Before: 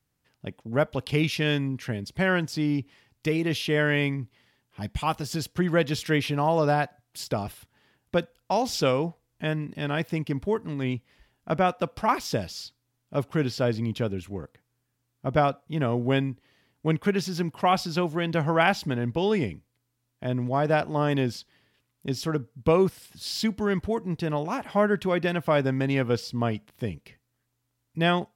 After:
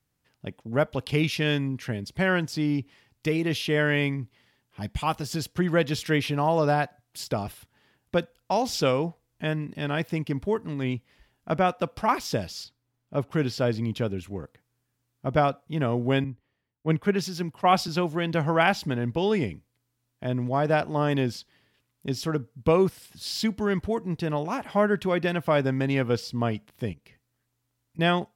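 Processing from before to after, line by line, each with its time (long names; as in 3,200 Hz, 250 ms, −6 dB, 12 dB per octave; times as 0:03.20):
0:12.64–0:13.31: high-shelf EQ 3,000 Hz −8 dB
0:16.24–0:17.88: multiband upward and downward expander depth 70%
0:26.93–0:27.99: downward compressor 2.5 to 1, threshold −52 dBFS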